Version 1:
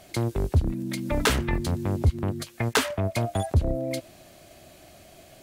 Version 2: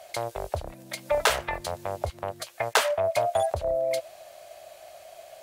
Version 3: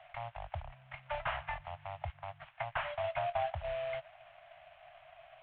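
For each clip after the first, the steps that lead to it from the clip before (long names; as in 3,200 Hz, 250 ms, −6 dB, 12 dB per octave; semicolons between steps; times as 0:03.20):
low shelf with overshoot 410 Hz −14 dB, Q 3
variable-slope delta modulation 16 kbit/s; Chebyshev band-stop filter 140–720 Hz, order 3; level −6 dB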